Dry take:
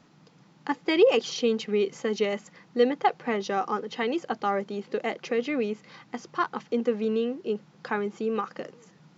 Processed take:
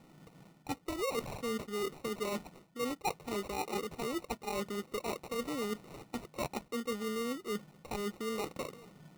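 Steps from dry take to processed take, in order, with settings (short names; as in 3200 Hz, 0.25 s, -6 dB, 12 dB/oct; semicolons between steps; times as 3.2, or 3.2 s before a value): reverse; compressor 6:1, threshold -34 dBFS, peak gain reduction 18.5 dB; reverse; sample-and-hold 27×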